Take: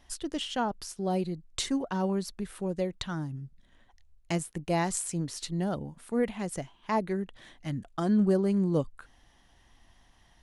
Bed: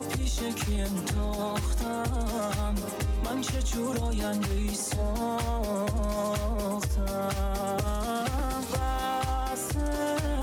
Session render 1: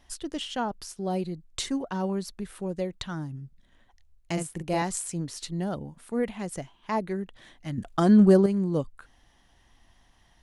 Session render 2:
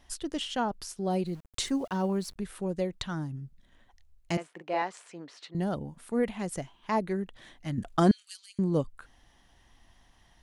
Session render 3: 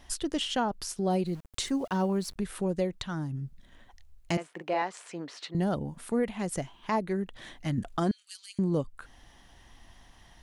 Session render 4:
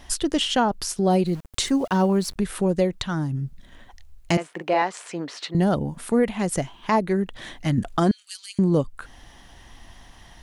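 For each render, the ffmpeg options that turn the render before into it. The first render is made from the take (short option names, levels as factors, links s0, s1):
-filter_complex "[0:a]asettb=1/sr,asplit=3[s0][s1][s2];[s0]atrim=end=4.334[s3];[s1]atrim=start=4.33:end=4.82,asetpts=PTS-STARTPTS,afade=t=in:d=0.004:c=qsin,afade=t=out:st=0.486:d=0.004:c=qsin,asplit=2[s4][s5];[s5]adelay=44,volume=0.631[s6];[s4][s6]amix=inputs=2:normalize=0,atrim=end_sample=21609[s7];[s2]atrim=start=4.816[s8];[s3][s7]acrossfade=d=0.004:c1=hsin:c2=qsin[s9];[s9][s8]acrossfade=d=0.004:c1=qsin:c2=hsin,asplit=3[s10][s11][s12];[s10]atrim=end=7.782[s13];[s11]atrim=start=7.778:end=8.462,asetpts=PTS-STARTPTS,volume=2.37[s14];[s12]atrim=start=8.458[s15];[s13][s14]acrossfade=d=0.004:c1=hsin:c2=hsin[s16];[s16][s15]acrossfade=d=0.004:c1=hsin:c2=hsin"
-filter_complex "[0:a]asettb=1/sr,asplit=3[s0][s1][s2];[s0]atrim=end=1.264[s3];[s1]atrim=start=1.26:end=2.36,asetpts=PTS-STARTPTS,afade=t=in:d=0.004:c=qsin,afade=t=out:st=1.096:d=0.004:c=qsin,aeval=exprs='val(0)*gte(abs(val(0)),0.00316)':c=same[s4];[s2]atrim=start=2.356[s5];[s3][s4]acrossfade=d=0.004:c1=hsin:c2=qsin[s6];[s6][s5]acrossfade=d=0.004:c1=qsin:c2=hsin,asettb=1/sr,asplit=3[s7][s8][s9];[s7]atrim=end=4.374[s10];[s8]atrim=start=4.37:end=5.55,asetpts=PTS-STARTPTS,afade=t=in:d=0.004:c=qsin,afade=t=out:st=1.176:d=0.004:c=qsin,highpass=490,lowpass=2700[s11];[s9]atrim=start=5.546[s12];[s10][s11]acrossfade=d=0.004:c1=hsin:c2=qsin[s13];[s13][s12]acrossfade=d=0.004:c1=qsin:c2=hsin,asettb=1/sr,asplit=3[s14][s15][s16];[s14]atrim=end=8.114[s17];[s15]atrim=start=8.11:end=8.59,asetpts=PTS-STARTPTS,afade=t=in:d=0.004:c=qsin,afade=t=out:st=0.476:d=0.004:c=qsin,asuperpass=centerf=5900:order=8:qfactor=0.68[s18];[s16]atrim=start=8.586[s19];[s17][s18]acrossfade=d=0.004:c1=hsin:c2=qsin[s20];[s20][s19]acrossfade=d=0.004:c1=qsin:c2=hsin"
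-filter_complex "[0:a]asplit=2[s0][s1];[s1]acompressor=threshold=0.0126:ratio=6,volume=1[s2];[s0][s2]amix=inputs=2:normalize=0,alimiter=limit=0.119:level=0:latency=1:release=440"
-af "volume=2.51"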